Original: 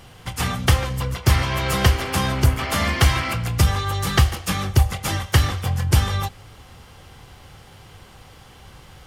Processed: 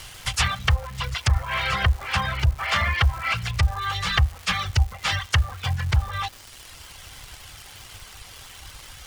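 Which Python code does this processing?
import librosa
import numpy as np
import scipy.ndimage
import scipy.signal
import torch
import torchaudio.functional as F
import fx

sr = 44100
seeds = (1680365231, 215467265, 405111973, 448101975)

p1 = fx.cvsd(x, sr, bps=64000)
p2 = fx.env_lowpass_down(p1, sr, base_hz=860.0, full_db=-14.5)
p3 = fx.tone_stack(p2, sr, knobs='10-0-10')
p4 = fx.dereverb_blind(p3, sr, rt60_s=1.2)
p5 = fx.over_compress(p4, sr, threshold_db=-29.0, ratio=-1.0)
p6 = p4 + F.gain(torch.from_numpy(p5), -2.0).numpy()
p7 = fx.dmg_crackle(p6, sr, seeds[0], per_s=480.0, level_db=-37.0)
y = F.gain(torch.from_numpy(p7), 4.5).numpy()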